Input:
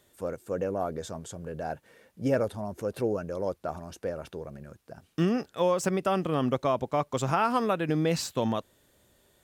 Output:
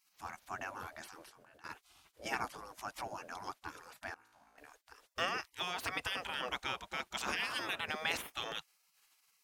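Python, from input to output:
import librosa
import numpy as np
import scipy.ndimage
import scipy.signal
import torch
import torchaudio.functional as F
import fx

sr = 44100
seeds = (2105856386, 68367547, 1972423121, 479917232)

y = fx.spec_gate(x, sr, threshold_db=-20, keep='weak')
y = fx.high_shelf(y, sr, hz=6700.0, db=-6.0)
y = fx.level_steps(y, sr, step_db=17, at=(1.28, 1.69), fade=0.02)
y = fx.comb_fb(y, sr, f0_hz=55.0, decay_s=1.6, harmonics='all', damping=0.0, mix_pct=90, at=(4.14, 4.58))
y = y * 10.0 ** (5.5 / 20.0)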